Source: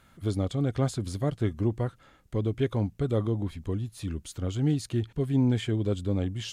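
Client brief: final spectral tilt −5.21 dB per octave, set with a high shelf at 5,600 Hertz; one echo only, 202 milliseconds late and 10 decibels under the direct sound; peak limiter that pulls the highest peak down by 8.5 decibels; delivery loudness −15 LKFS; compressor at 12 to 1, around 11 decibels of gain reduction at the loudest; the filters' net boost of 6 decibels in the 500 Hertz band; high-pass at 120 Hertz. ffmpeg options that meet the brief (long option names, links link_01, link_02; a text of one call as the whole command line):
ffmpeg -i in.wav -af "highpass=120,equalizer=frequency=500:width_type=o:gain=7.5,highshelf=frequency=5600:gain=9,acompressor=threshold=-29dB:ratio=12,alimiter=level_in=3.5dB:limit=-24dB:level=0:latency=1,volume=-3.5dB,aecho=1:1:202:0.316,volume=23.5dB" out.wav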